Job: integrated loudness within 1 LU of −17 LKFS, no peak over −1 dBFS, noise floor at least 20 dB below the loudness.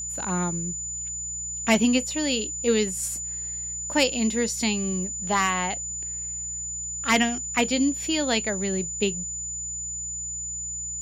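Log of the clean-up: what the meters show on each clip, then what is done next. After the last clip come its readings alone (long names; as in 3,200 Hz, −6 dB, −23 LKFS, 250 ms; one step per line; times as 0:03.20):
mains hum 60 Hz; hum harmonics up to 180 Hz; level of the hum −42 dBFS; interfering tone 7,000 Hz; level of the tone −30 dBFS; integrated loudness −25.5 LKFS; sample peak −7.0 dBFS; target loudness −17.0 LKFS
→ hum removal 60 Hz, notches 3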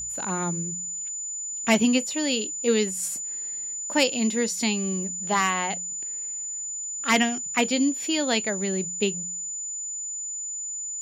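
mains hum none found; interfering tone 7,000 Hz; level of the tone −30 dBFS
→ notch filter 7,000 Hz, Q 30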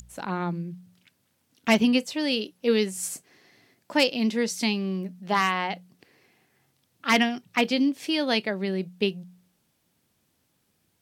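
interfering tone none found; integrated loudness −25.5 LKFS; sample peak −7.0 dBFS; target loudness −17.0 LKFS
→ level +8.5 dB
brickwall limiter −1 dBFS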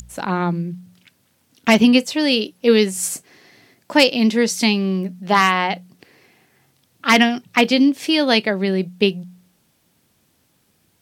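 integrated loudness −17.5 LKFS; sample peak −1.0 dBFS; background noise floor −63 dBFS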